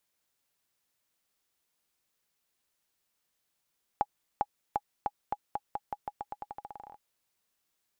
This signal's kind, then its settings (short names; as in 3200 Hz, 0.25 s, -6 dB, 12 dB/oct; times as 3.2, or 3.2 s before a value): bouncing ball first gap 0.40 s, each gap 0.87, 826 Hz, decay 46 ms -14.5 dBFS